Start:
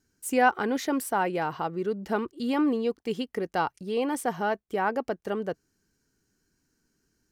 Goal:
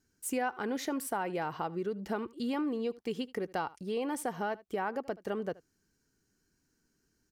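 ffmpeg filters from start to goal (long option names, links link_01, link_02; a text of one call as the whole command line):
ffmpeg -i in.wav -af "aecho=1:1:76:0.0708,acompressor=threshold=-28dB:ratio=4,volume=-2.5dB" out.wav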